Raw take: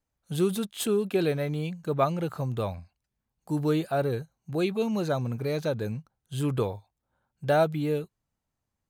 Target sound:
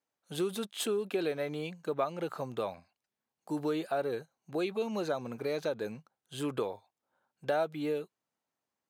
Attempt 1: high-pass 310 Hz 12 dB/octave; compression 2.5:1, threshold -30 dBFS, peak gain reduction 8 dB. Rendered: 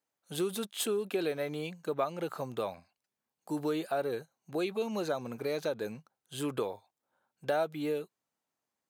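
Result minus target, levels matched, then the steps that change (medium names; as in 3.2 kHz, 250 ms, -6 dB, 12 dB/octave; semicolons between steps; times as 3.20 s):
8 kHz band +3.0 dB
add after high-pass: treble shelf 8.5 kHz -7.5 dB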